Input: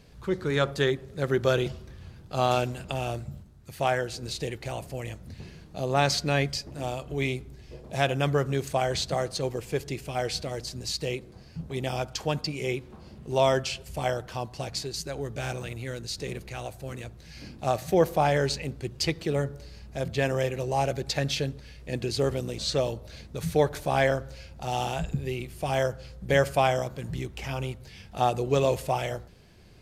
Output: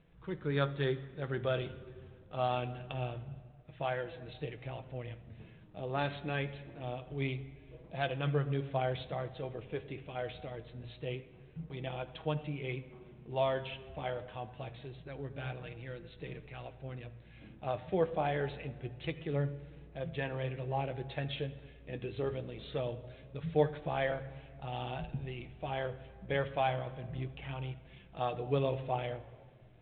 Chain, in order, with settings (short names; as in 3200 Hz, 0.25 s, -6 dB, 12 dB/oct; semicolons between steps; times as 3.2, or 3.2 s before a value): shoebox room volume 3500 m³, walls mixed, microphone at 0.54 m; flange 0.25 Hz, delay 5.7 ms, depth 4.7 ms, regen +54%; gain -5.5 dB; G.726 40 kbps 8000 Hz